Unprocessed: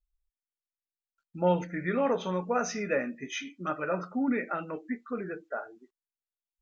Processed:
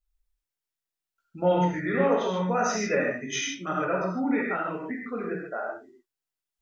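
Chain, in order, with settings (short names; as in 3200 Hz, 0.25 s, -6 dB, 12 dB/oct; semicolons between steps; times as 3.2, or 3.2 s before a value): 3.16–3.58 dynamic EQ 6100 Hz, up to +7 dB, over -51 dBFS, Q 0.7; non-linear reverb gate 0.17 s flat, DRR -3 dB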